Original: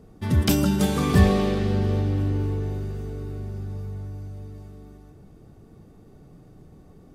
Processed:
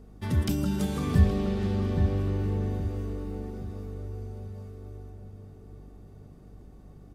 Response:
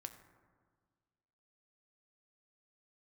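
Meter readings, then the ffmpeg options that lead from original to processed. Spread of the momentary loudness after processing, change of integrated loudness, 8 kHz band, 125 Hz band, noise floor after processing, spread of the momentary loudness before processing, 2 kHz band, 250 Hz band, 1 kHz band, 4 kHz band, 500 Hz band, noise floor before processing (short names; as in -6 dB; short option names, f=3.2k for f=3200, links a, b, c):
21 LU, -5.0 dB, n/a, -4.0 dB, -50 dBFS, 18 LU, -9.0 dB, -5.5 dB, -8.5 dB, -10.0 dB, -6.5 dB, -50 dBFS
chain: -filter_complex "[0:a]equalizer=f=160:w=0.62:g=-3,acrossover=split=310[a][b];[b]acompressor=threshold=-32dB:ratio=10[c];[a][c]amix=inputs=2:normalize=0,asplit=2[d][e];[e]adelay=820,lowpass=f=1.2k:p=1,volume=-5dB,asplit=2[f][g];[g]adelay=820,lowpass=f=1.2k:p=1,volume=0.37,asplit=2[h][i];[i]adelay=820,lowpass=f=1.2k:p=1,volume=0.37,asplit=2[j][k];[k]adelay=820,lowpass=f=1.2k:p=1,volume=0.37,asplit=2[l][m];[m]adelay=820,lowpass=f=1.2k:p=1,volume=0.37[n];[f][h][j][l][n]amix=inputs=5:normalize=0[o];[d][o]amix=inputs=2:normalize=0,aeval=exprs='val(0)+0.00501*(sin(2*PI*50*n/s)+sin(2*PI*2*50*n/s)/2+sin(2*PI*3*50*n/s)/3+sin(2*PI*4*50*n/s)/4+sin(2*PI*5*50*n/s)/5)':c=same,volume=-3dB"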